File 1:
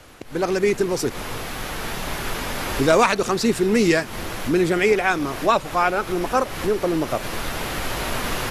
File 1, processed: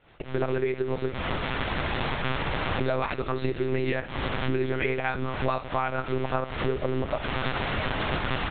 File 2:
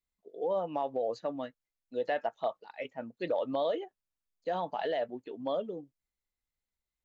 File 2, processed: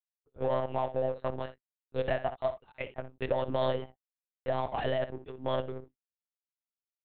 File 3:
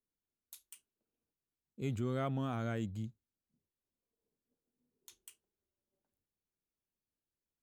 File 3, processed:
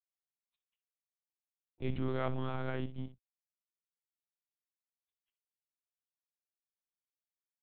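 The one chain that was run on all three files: companding laws mixed up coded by A; expander -45 dBFS; compression 10:1, threshold -27 dBFS; early reflections 50 ms -17 dB, 66 ms -14 dB; monotone LPC vocoder at 8 kHz 130 Hz; trim +3.5 dB

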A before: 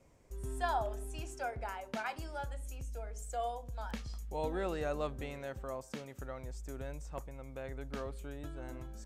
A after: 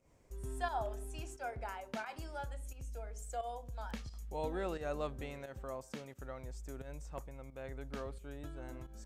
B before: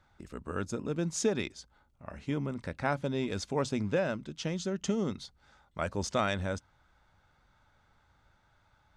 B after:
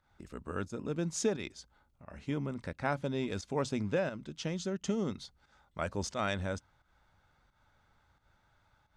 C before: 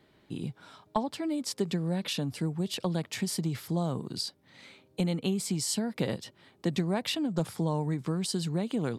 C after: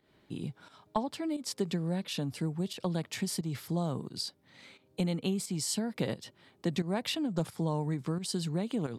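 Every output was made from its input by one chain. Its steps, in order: volume shaper 88 bpm, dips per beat 1, -11 dB, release 164 ms; trim -2 dB

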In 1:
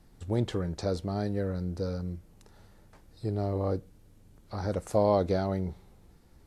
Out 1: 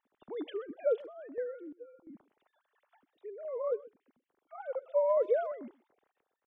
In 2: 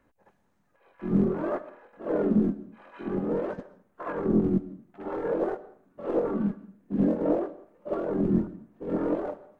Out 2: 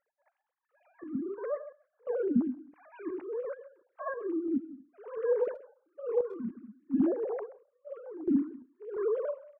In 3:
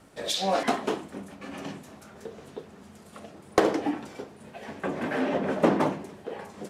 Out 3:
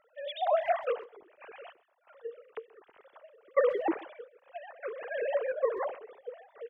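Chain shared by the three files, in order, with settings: formants replaced by sine waves; random-step tremolo 2.9 Hz, depth 90%; speakerphone echo 130 ms, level -20 dB

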